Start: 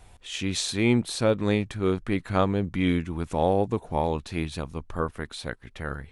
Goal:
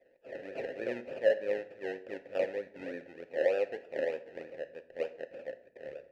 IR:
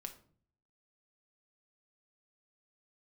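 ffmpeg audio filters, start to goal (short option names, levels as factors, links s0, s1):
-filter_complex "[0:a]equalizer=f=90:w=0.45:g=-12.5,acrusher=samples=30:mix=1:aa=0.000001:lfo=1:lforange=18:lforate=3.3,asplit=3[s0][s1][s2];[s0]bandpass=f=530:t=q:w=8,volume=1[s3];[s1]bandpass=f=1840:t=q:w=8,volume=0.501[s4];[s2]bandpass=f=2480:t=q:w=8,volume=0.355[s5];[s3][s4][s5]amix=inputs=3:normalize=0,equalizer=f=3300:w=4:g=-8,asplit=2[s6][s7];[1:a]atrim=start_sample=2205,asetrate=29988,aresample=44100,lowpass=6400[s8];[s7][s8]afir=irnorm=-1:irlink=0,volume=1.26[s9];[s6][s9]amix=inputs=2:normalize=0,volume=0.794"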